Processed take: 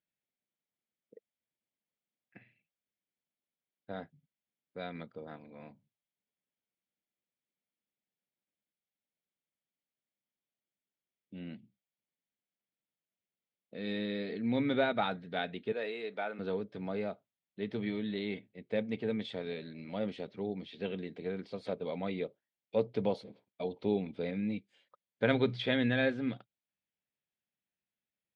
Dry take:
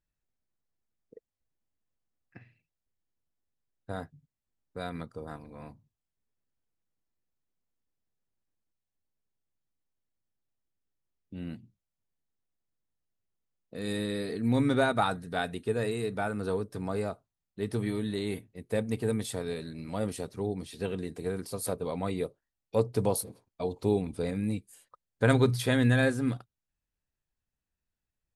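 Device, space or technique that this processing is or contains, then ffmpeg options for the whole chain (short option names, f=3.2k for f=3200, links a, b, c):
kitchen radio: -filter_complex "[0:a]asettb=1/sr,asplit=3[a][b][c];[a]atrim=end=15.724[d];[b]atrim=start=15.72:end=16.39,asetpts=PTS-STARTPTS,afade=t=in:d=0.004:c=qsin,afade=t=out:st=0.666:d=0.004:c=qsin,highpass=400[e];[c]atrim=start=16.386[f];[d][e]acrossfade=d=0.004:c1=hsin:c2=qsin[g];[g][f]acrossfade=d=0.004:c1=qsin:c2=hsin,highpass=170,equalizer=f=200:t=q:w=4:g=5,equalizer=f=580:t=q:w=4:g=4,equalizer=f=1.1k:t=q:w=4:g=-6,equalizer=f=2.2k:t=q:w=4:g=7,equalizer=f=3.3k:t=q:w=4:g=7,lowpass=f=4k:w=0.5412,lowpass=f=4k:w=1.3066,volume=-5dB"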